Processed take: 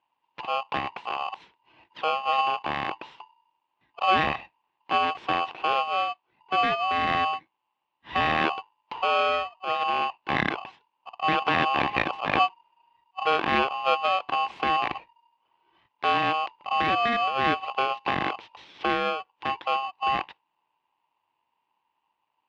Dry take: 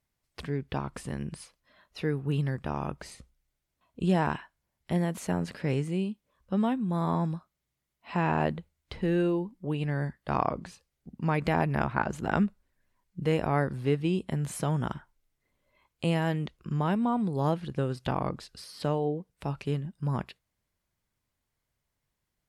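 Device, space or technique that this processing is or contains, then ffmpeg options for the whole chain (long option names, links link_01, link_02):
ring modulator pedal into a guitar cabinet: -af "aeval=exprs='val(0)*sgn(sin(2*PI*940*n/s))':channel_layout=same,highpass=76,equalizer=frequency=84:width_type=q:width=4:gain=-7,equalizer=frequency=330:width_type=q:width=4:gain=4,equalizer=frequency=930:width_type=q:width=4:gain=8,equalizer=frequency=1400:width_type=q:width=4:gain=-4,equalizer=frequency=2600:width_type=q:width=4:gain=5,lowpass=frequency=3400:width=0.5412,lowpass=frequency=3400:width=1.3066,volume=2dB"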